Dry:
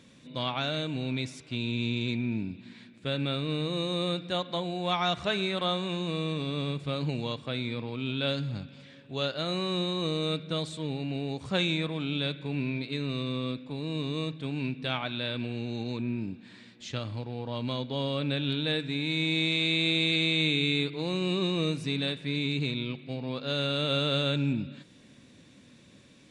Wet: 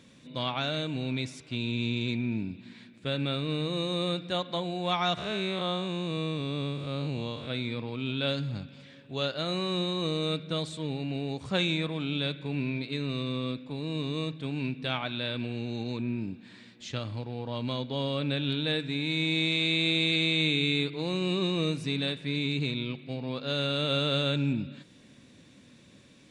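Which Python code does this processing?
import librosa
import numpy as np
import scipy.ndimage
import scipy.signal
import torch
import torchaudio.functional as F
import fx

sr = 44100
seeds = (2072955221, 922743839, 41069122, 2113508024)

y = fx.spec_blur(x, sr, span_ms=143.0, at=(5.17, 7.49), fade=0.02)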